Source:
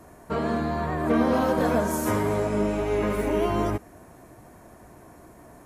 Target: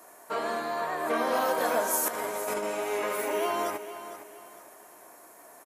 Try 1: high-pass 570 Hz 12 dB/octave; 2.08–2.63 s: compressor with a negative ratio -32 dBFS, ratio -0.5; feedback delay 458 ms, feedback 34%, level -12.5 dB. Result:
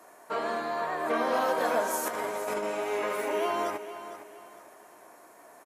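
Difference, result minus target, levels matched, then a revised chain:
8 kHz band -5.0 dB
high-pass 570 Hz 12 dB/octave; treble shelf 8.6 kHz +12 dB; 2.08–2.63 s: compressor with a negative ratio -32 dBFS, ratio -0.5; feedback delay 458 ms, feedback 34%, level -12.5 dB

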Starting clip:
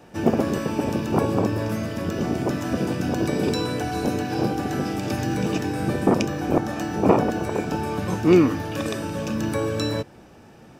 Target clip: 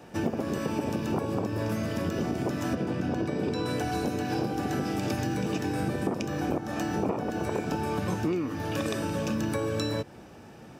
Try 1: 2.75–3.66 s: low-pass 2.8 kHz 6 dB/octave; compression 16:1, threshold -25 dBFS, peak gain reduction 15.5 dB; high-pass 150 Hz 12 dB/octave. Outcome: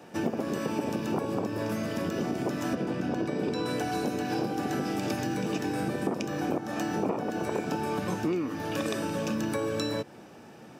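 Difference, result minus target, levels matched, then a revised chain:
125 Hz band -3.5 dB
2.75–3.66 s: low-pass 2.8 kHz 6 dB/octave; compression 16:1, threshold -25 dBFS, peak gain reduction 15.5 dB; high-pass 48 Hz 12 dB/octave

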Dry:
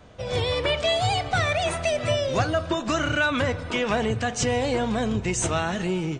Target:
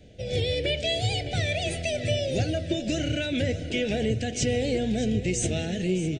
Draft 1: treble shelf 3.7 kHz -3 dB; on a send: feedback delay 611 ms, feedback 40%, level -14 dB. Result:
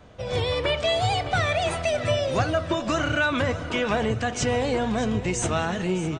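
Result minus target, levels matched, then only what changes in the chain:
1 kHz band +10.0 dB
add first: Butterworth band-stop 1.1 kHz, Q 0.68

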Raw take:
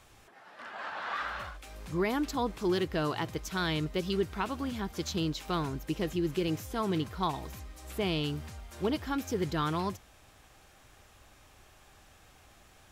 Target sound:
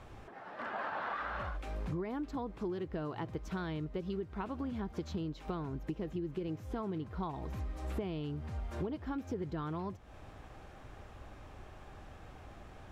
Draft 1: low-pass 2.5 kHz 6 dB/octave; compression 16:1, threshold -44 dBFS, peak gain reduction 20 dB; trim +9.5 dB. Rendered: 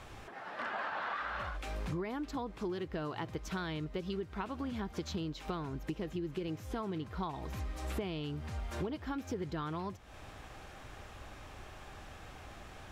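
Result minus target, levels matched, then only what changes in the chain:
2 kHz band +3.0 dB
change: low-pass 830 Hz 6 dB/octave

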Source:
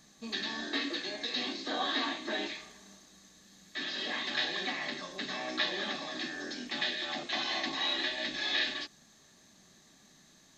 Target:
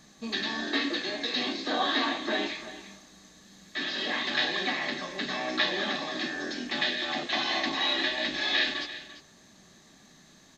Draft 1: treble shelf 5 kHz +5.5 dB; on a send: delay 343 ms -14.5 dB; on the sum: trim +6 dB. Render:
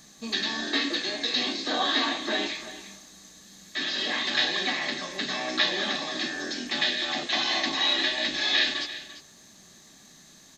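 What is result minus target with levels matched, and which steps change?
8 kHz band +4.5 dB
change: treble shelf 5 kHz -6 dB

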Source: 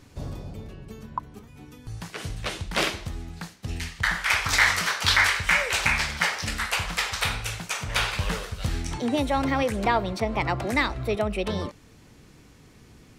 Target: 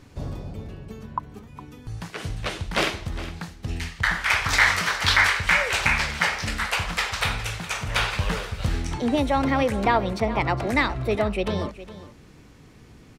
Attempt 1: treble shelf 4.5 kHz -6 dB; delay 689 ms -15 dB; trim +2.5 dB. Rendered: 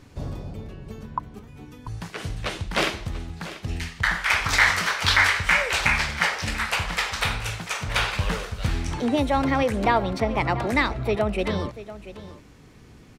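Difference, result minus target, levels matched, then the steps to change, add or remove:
echo 278 ms late
change: delay 411 ms -15 dB

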